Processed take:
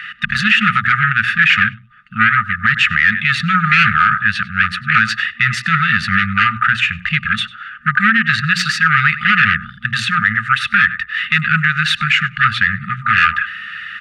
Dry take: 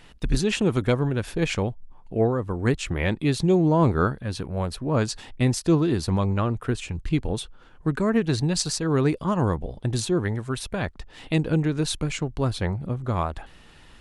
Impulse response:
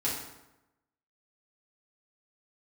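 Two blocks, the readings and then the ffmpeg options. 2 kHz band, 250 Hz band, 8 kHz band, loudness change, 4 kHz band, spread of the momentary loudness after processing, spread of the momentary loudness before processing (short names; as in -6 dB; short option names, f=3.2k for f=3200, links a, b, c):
+25.0 dB, -0.5 dB, -1.0 dB, +11.0 dB, +13.5 dB, 7 LU, 9 LU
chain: -filter_complex "[0:a]equalizer=f=830:t=o:w=0.2:g=14.5,asplit=2[a][b];[b]highpass=f=720:p=1,volume=8dB,asoftclip=type=tanh:threshold=-5.5dB[c];[a][c]amix=inputs=2:normalize=0,lowpass=f=1.6k:p=1,volume=-6dB,bandreject=f=60:t=h:w=6,bandreject=f=120:t=h:w=6,bandreject=f=180:t=h:w=6,bandreject=f=240:t=h:w=6,bandreject=f=300:t=h:w=6,aecho=1:1:1.1:0.44,asplit=2[d][e];[e]adelay=98,lowpass=f=3.9k:p=1,volume=-18dB,asplit=2[f][g];[g]adelay=98,lowpass=f=3.9k:p=1,volume=0.23[h];[f][h]amix=inputs=2:normalize=0[i];[d][i]amix=inputs=2:normalize=0,aeval=exprs='(tanh(10*val(0)+0.4)-tanh(0.4))/10':c=same,highpass=110,afftfilt=real='re*(1-between(b*sr/4096,230,1200))':imag='im*(1-between(b*sr/4096,230,1200))':win_size=4096:overlap=0.75,acrossover=split=510 2600:gain=0.0794 1 0.0631[j][k][l];[j][k][l]amix=inputs=3:normalize=0,alimiter=level_in=31.5dB:limit=-1dB:release=50:level=0:latency=1,volume=-1dB"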